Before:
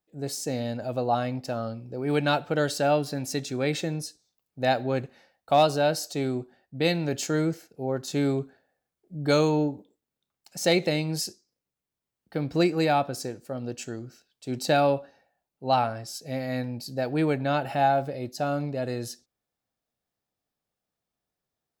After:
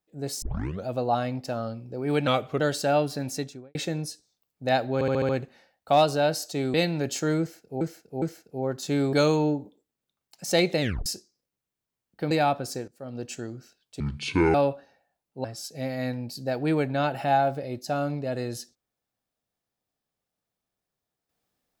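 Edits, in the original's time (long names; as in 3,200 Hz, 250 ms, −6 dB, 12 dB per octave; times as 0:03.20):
0:00.42: tape start 0.44 s
0:02.27–0:02.56: play speed 88%
0:03.25–0:03.71: fade out and dull
0:04.90: stutter 0.07 s, 6 plays
0:06.35–0:06.81: remove
0:07.47–0:07.88: repeat, 3 plays
0:08.38–0:09.26: remove
0:10.94: tape stop 0.25 s
0:12.44–0:12.80: remove
0:13.37–0:13.75: fade in, from −15 dB
0:14.49–0:14.80: play speed 57%
0:15.70–0:15.95: remove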